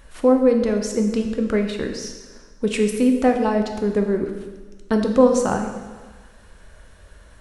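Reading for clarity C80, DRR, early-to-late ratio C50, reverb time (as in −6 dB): 7.5 dB, 3.5 dB, 6.0 dB, 1.4 s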